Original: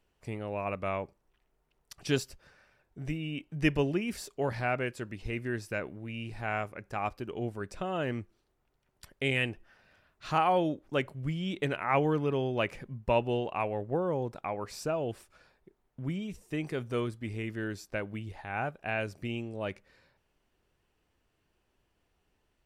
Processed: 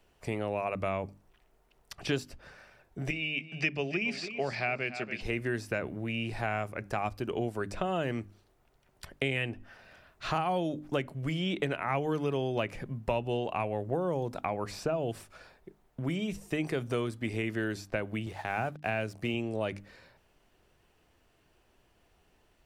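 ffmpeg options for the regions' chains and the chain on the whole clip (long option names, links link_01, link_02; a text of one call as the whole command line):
ffmpeg -i in.wav -filter_complex "[0:a]asettb=1/sr,asplit=3[link_01][link_02][link_03];[link_01]atrim=end=3.104[link_04];[link_02]atrim=start=3.1:end=5.21,asetpts=PTS-STARTPTS,afade=type=in:duration=0.004:curve=qsin,afade=type=out:start_time=2.106:duration=0.004:curve=qsin,highpass=250,equalizer=frequency=300:width_type=q:width=4:gain=-9,equalizer=frequency=500:width_type=q:width=4:gain=-6,equalizer=frequency=960:width_type=q:width=4:gain=-7,equalizer=frequency=1500:width_type=q:width=4:gain=-3,equalizer=frequency=2400:width_type=q:width=4:gain=9,equalizer=frequency=4800:width_type=q:width=4:gain=9,lowpass=frequency=7400:width=0.5412,lowpass=frequency=7400:width=1.3066,aecho=1:1:284|568:0.168|0.0302,atrim=end_sample=93051[link_05];[link_03]atrim=start=5.206[link_06];[link_04][link_05]acrossfade=duration=0.004:curve1=hsin:curve2=qsin[link_07];[link_07][link_06]acrossfade=duration=0.004:curve1=qsin:curve2=hsin,asettb=1/sr,asplit=3[link_08][link_09][link_10];[link_08]atrim=end=18.264[link_11];[link_09]atrim=start=18.26:end=19.34,asetpts=PTS-STARTPTS,afade=type=in:duration=0.004:curve=qsin,afade=type=out:start_time=1.076:duration=0.004:curve=qsin,highpass=85,aeval=exprs='sgn(val(0))*max(abs(val(0))-0.00112,0)':channel_layout=same[link_12];[link_10]atrim=start=19.336[link_13];[link_11][link_12]acrossfade=duration=0.004:curve1=hsin:curve2=qsin[link_14];[link_14][link_13]acrossfade=duration=0.004:curve1=qsin:curve2=hsin,equalizer=frequency=680:width_type=o:width=0.28:gain=3.5,bandreject=frequency=50:width_type=h:width=6,bandreject=frequency=100:width_type=h:width=6,bandreject=frequency=150:width_type=h:width=6,bandreject=frequency=200:width_type=h:width=6,bandreject=frequency=250:width_type=h:width=6,bandreject=frequency=300:width_type=h:width=6,acrossover=split=250|3700[link_15][link_16][link_17];[link_15]acompressor=threshold=-45dB:ratio=4[link_18];[link_16]acompressor=threshold=-39dB:ratio=4[link_19];[link_17]acompressor=threshold=-58dB:ratio=4[link_20];[link_18][link_19][link_20]amix=inputs=3:normalize=0,volume=8dB" out.wav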